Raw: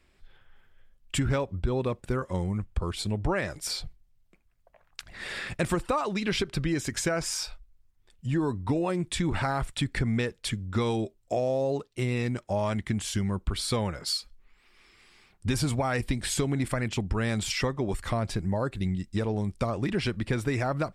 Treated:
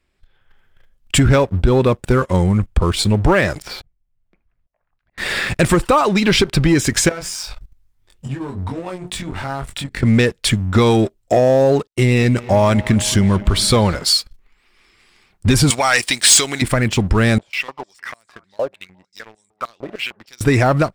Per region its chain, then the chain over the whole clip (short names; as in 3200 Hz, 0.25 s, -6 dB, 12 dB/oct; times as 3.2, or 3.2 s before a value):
3.62–5.18 LPF 2300 Hz + auto swell 0.661 s
7.09–10.03 compressor 8:1, threshold -40 dBFS + notches 60/120/180/240/300/360/420/480 Hz + doubler 22 ms -2 dB
11.87–13.96 expander -52 dBFS + dark delay 0.224 s, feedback 72%, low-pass 3200 Hz, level -18 dB
15.7–16.62 weighting filter ITU-R 468 + mismatched tape noise reduction decoder only
17.38–20.41 feedback echo 0.209 s, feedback 43%, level -21 dB + stepped band-pass 6.6 Hz 600–7800 Hz
whole clip: AGC gain up to 7.5 dB; sample leveller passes 2